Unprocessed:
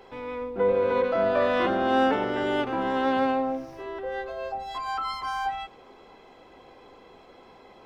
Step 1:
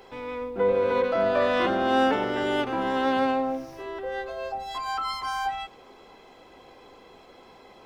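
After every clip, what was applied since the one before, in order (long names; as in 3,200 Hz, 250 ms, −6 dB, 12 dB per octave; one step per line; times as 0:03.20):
high-shelf EQ 4,300 Hz +7.5 dB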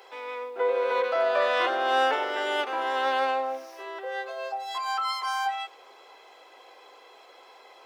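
Bessel high-pass filter 620 Hz, order 6
level +2 dB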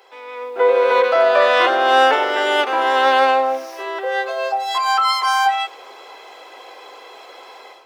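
automatic gain control gain up to 12 dB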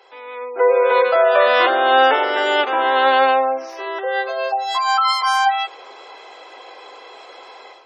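gate on every frequency bin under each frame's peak −30 dB strong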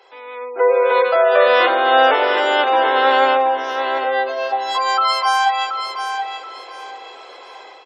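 repeating echo 728 ms, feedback 27%, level −7.5 dB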